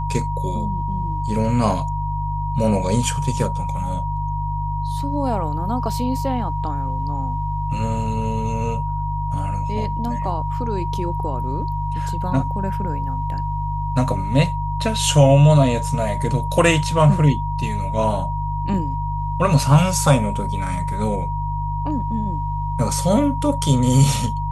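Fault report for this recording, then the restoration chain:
hum 50 Hz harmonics 3 -25 dBFS
whine 950 Hz -26 dBFS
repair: band-stop 950 Hz, Q 30; de-hum 50 Hz, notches 3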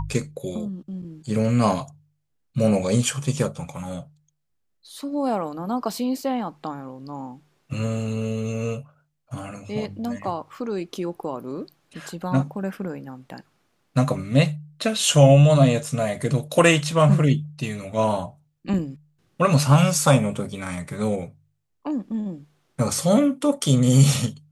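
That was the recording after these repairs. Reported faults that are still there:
nothing left

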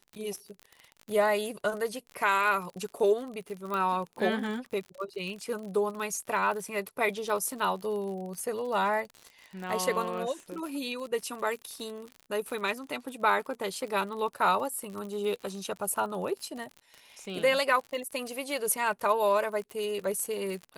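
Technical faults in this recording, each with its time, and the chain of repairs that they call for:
crackle 52 per s -36 dBFS
3.74 s: pop -20 dBFS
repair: de-click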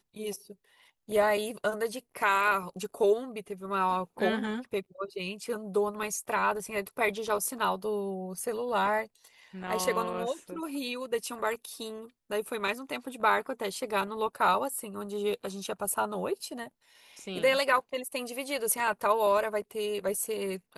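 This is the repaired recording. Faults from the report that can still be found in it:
3.74 s: pop

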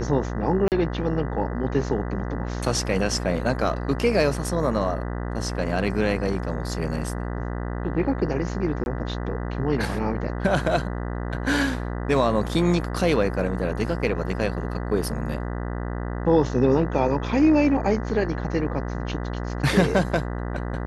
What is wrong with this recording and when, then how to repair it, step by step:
buzz 60 Hz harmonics 33 -29 dBFS
0.68–0.72 s: dropout 38 ms
8.84–8.86 s: dropout 21 ms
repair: de-hum 60 Hz, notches 33; interpolate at 0.68 s, 38 ms; interpolate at 8.84 s, 21 ms

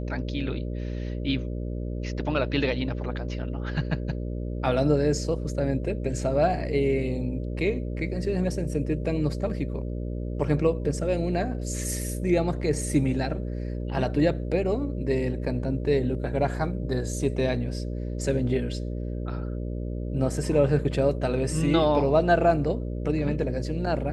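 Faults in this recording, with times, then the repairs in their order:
buzz 60 Hz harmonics 10 -31 dBFS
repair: de-hum 60 Hz, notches 10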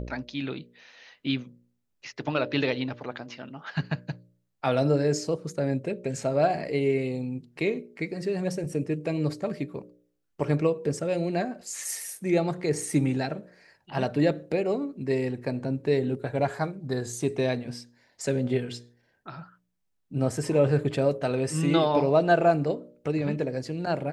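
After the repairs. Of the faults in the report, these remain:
nothing left

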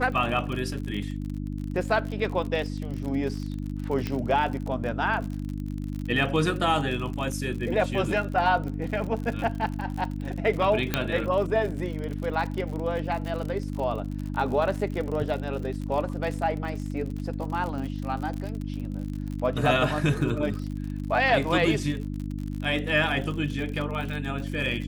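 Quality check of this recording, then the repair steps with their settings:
crackle 51 per s -32 dBFS
hum 50 Hz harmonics 6 -32 dBFS
4.07 s: pop -16 dBFS
10.94 s: pop -8 dBFS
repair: de-click; de-hum 50 Hz, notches 6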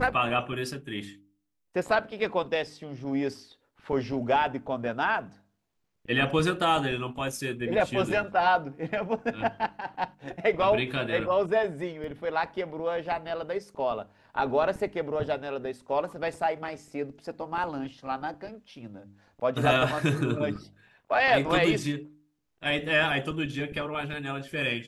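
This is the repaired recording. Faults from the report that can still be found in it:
nothing left

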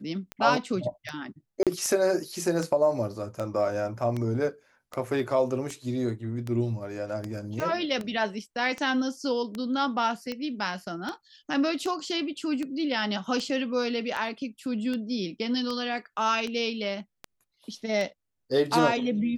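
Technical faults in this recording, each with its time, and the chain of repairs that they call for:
tick 78 rpm -19 dBFS
1.63–1.67 s: dropout 37 ms
7.60 s: pop -18 dBFS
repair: de-click; interpolate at 1.63 s, 37 ms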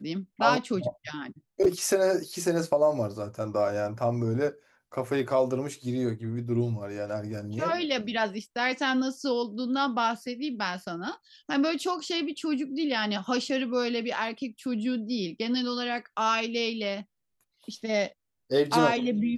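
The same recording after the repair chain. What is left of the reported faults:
7.60 s: pop

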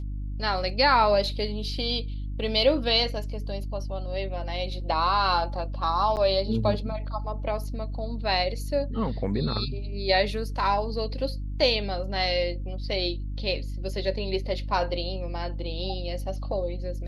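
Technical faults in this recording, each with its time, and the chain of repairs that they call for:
hum 50 Hz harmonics 6 -32 dBFS
6.16–6.17 s: dropout 9 ms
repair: de-hum 50 Hz, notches 6; interpolate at 6.16 s, 9 ms

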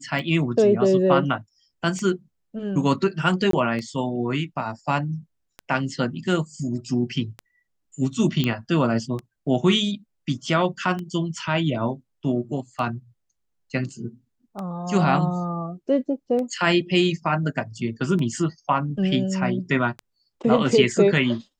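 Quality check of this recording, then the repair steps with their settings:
tick 33 1/3 rpm -19 dBFS
3.51–3.53 s: dropout 23 ms
8.44 s: pop -10 dBFS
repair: de-click; interpolate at 3.51 s, 23 ms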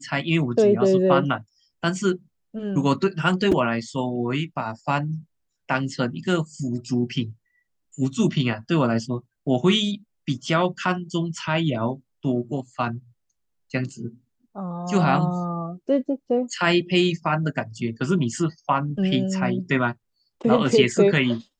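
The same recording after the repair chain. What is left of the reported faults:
nothing left

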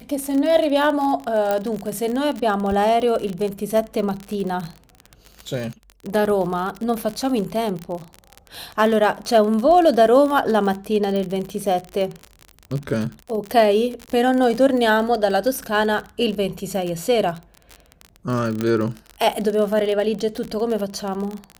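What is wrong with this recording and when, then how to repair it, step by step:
crackle 36 per s -24 dBFS
1.51 s: pop -8 dBFS
11.16 s: pop
18.61 s: pop -10 dBFS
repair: de-click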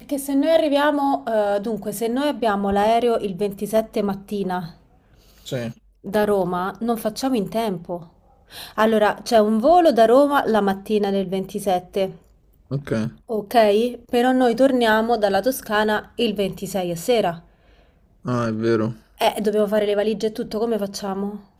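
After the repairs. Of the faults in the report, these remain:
nothing left

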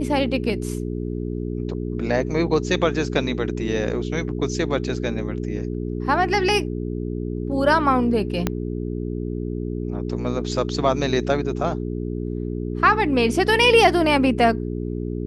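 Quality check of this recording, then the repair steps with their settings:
hum 60 Hz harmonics 7 -27 dBFS
8.47 s: pop -7 dBFS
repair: de-click; de-hum 60 Hz, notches 7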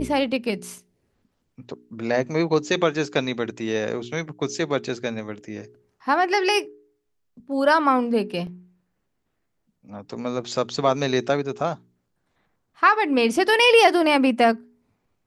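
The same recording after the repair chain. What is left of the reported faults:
8.47 s: pop

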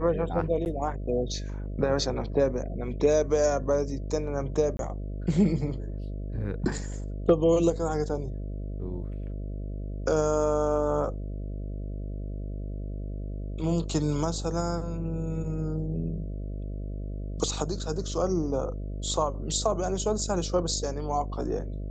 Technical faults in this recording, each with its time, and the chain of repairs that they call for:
buzz 50 Hz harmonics 13 -34 dBFS
0.65–0.66 s: dropout 9.4 ms
4.77–4.79 s: dropout 22 ms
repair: de-hum 50 Hz, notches 13; interpolate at 0.65 s, 9.4 ms; interpolate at 4.77 s, 22 ms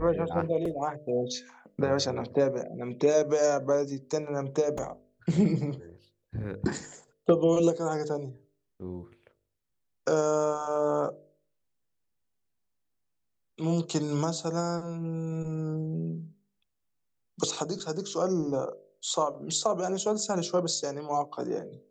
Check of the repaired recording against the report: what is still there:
nothing left

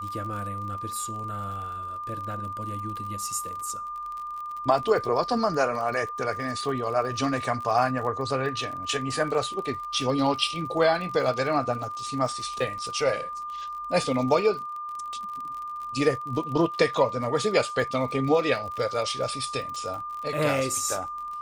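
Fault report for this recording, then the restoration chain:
crackle 39 per s -34 dBFS
whine 1.2 kHz -32 dBFS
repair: de-click; band-stop 1.2 kHz, Q 30

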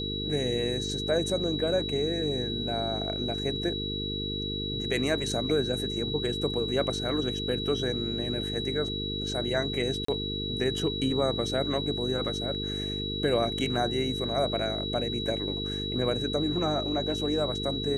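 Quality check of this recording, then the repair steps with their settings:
buzz 50 Hz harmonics 9 -35 dBFS
whine 3.9 kHz -33 dBFS
10.05–10.08 s: dropout 34 ms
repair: de-hum 50 Hz, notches 9; band-stop 3.9 kHz, Q 30; interpolate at 10.05 s, 34 ms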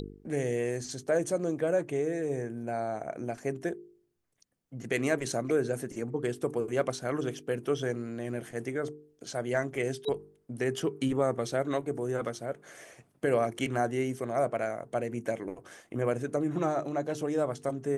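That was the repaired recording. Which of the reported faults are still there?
nothing left

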